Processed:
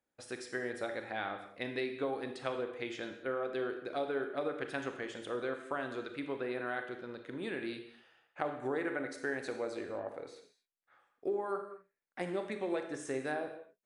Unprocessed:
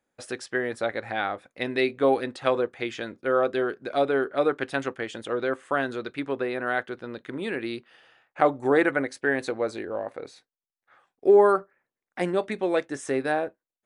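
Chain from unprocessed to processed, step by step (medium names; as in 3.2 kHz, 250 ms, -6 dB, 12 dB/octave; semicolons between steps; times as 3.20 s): compression 6:1, threshold -23 dBFS, peak gain reduction 10.5 dB; reverberation, pre-delay 28 ms, DRR 6 dB; trim -9 dB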